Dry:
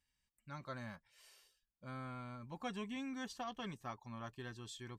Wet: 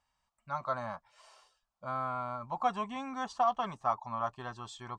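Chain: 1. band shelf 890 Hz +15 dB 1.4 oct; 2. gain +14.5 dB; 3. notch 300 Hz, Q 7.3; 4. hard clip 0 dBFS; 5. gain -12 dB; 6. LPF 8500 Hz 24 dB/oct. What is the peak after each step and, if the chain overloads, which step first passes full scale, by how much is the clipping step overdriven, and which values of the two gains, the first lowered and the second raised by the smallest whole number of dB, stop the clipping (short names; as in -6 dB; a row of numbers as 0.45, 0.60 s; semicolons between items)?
-19.0, -4.5, -4.5, -4.5, -16.5, -16.5 dBFS; no overload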